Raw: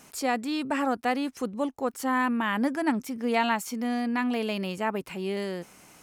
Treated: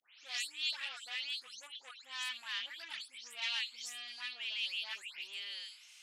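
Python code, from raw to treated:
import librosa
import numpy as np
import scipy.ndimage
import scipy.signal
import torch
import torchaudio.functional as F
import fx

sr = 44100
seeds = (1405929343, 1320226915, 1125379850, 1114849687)

y = fx.spec_delay(x, sr, highs='late', ms=261)
y = 10.0 ** (-26.0 / 20.0) * np.tanh(y / 10.0 ** (-26.0 / 20.0))
y = fx.ladder_bandpass(y, sr, hz=3900.0, resonance_pct=45)
y = y * 10.0 ** (12.0 / 20.0)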